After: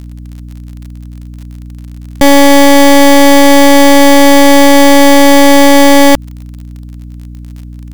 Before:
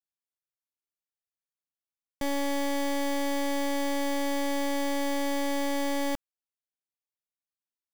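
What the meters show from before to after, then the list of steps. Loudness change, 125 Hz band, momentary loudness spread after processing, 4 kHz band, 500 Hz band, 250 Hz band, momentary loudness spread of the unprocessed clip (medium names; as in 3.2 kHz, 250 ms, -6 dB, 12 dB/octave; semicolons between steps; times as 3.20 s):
+25.5 dB, no reading, 2 LU, +25.5 dB, +25.5 dB, +25.5 dB, 2 LU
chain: hum 60 Hz, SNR 25 dB; crackle 46 per s -53 dBFS; loudness maximiser +30.5 dB; trim -1 dB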